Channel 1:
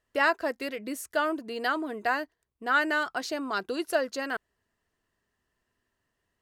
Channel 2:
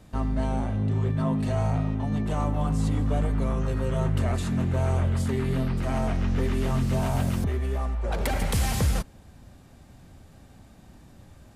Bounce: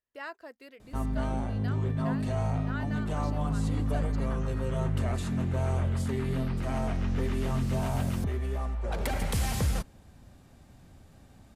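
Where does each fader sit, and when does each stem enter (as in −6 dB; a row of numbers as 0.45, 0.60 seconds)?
−16.5, −4.0 decibels; 0.00, 0.80 seconds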